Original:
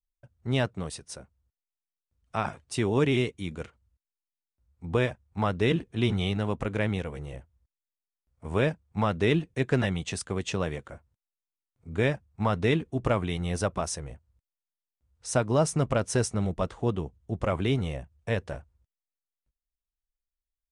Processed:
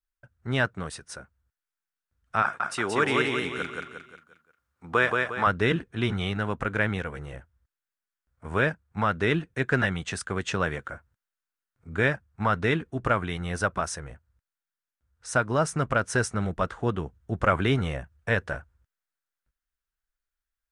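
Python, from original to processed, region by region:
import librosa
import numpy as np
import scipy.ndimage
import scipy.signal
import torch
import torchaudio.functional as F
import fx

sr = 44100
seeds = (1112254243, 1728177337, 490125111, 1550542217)

y = fx.chain(x, sr, fx.highpass(hz=410.0, slope=6),
    fx.peak_eq(hz=1200.0, db=4.5, octaves=0.33),
    fx.echo_feedback(ms=178, feedback_pct=42, wet_db=-3), at=(2.42, 5.47))
y = fx.peak_eq(y, sr, hz=1500.0, db=13.0, octaves=0.75)
y = fx.rider(y, sr, range_db=10, speed_s=2.0)
y = y * librosa.db_to_amplitude(-1.5)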